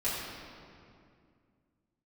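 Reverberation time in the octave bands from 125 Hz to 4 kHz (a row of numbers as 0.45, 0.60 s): 3.2, 3.2, 2.4, 2.2, 2.0, 1.6 s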